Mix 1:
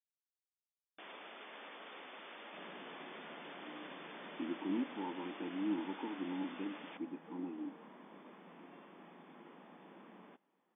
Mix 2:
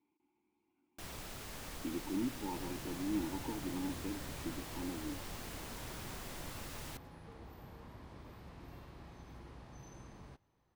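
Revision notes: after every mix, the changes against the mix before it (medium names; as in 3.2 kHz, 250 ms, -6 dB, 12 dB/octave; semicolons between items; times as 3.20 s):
speech: entry -2.55 s; first sound: remove high-pass 390 Hz 12 dB/octave; master: remove brick-wall FIR band-pass 170–3600 Hz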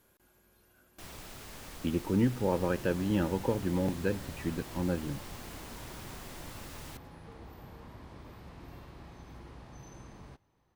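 speech: remove vowel filter u; second sound +3.5 dB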